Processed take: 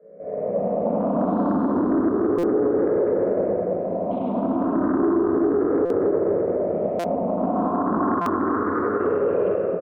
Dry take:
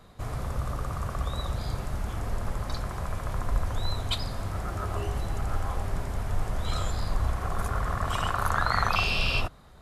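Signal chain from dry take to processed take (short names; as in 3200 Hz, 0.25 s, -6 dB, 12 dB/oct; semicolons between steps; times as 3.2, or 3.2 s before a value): moving spectral ripple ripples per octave 0.53, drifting +0.32 Hz, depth 21 dB; AGC gain up to 11.5 dB; on a send: echo 98 ms -3.5 dB; on the sum: compressor 6:1, threshold -13 dBFS, peak gain reduction 10 dB; elliptic band-pass 160–840 Hz, stop band 70 dB; low shelf 260 Hz -9.5 dB; fixed phaser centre 340 Hz, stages 4; shoebox room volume 120 m³, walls hard, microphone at 1.3 m; limiter -18 dBFS, peak gain reduction 7.5 dB; stuck buffer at 2.38/5.85/6.99/8.21, samples 256, times 8; Doppler distortion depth 0.26 ms; gain +5 dB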